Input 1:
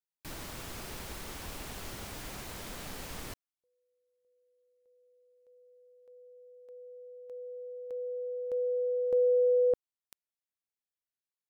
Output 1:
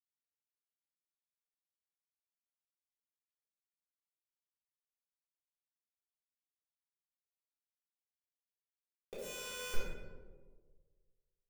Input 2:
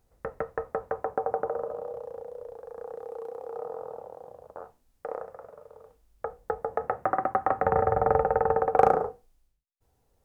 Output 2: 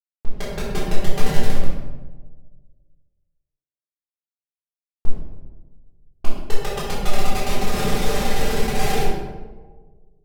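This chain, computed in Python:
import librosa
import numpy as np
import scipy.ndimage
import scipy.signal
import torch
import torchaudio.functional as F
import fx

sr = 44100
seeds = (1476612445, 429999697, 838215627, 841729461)

y = fx.schmitt(x, sr, flips_db=-22.0)
y = fx.high_shelf(y, sr, hz=2200.0, db=10.0)
y = y + 0.68 * np.pad(y, (int(5.0 * sr / 1000.0), 0))[:len(y)]
y = fx.rider(y, sr, range_db=4, speed_s=0.5)
y = fx.leveller(y, sr, passes=3)
y = fx.env_lowpass(y, sr, base_hz=620.0, full_db=-20.5)
y = np.where(np.abs(y) >= 10.0 ** (-32.5 / 20.0), y, 0.0)
y = fx.echo_tape(y, sr, ms=65, feedback_pct=85, wet_db=-8.0, lp_hz=1500.0, drive_db=15.0, wow_cents=12)
y = fx.room_shoebox(y, sr, seeds[0], volume_m3=460.0, walls='mixed', distance_m=3.7)
y = F.gain(torch.from_numpy(y), -11.0).numpy()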